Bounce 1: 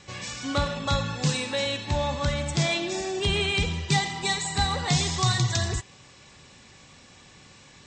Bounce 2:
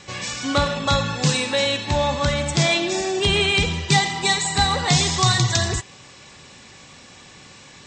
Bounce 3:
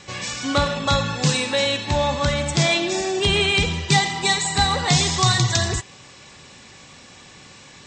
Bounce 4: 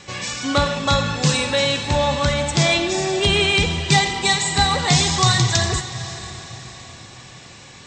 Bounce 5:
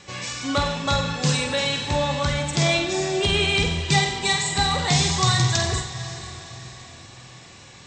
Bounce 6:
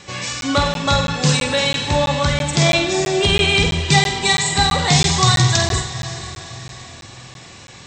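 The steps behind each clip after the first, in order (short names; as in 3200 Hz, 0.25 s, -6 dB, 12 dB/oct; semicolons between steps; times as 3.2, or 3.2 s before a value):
low shelf 120 Hz -6 dB; gain +7 dB
nothing audible
diffused feedback echo 0.499 s, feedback 48%, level -13 dB; gain +1.5 dB
flutter echo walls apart 8.2 m, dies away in 0.39 s; gain -4.5 dB
crackling interface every 0.33 s, samples 512, zero, from 0.41; gain +5.5 dB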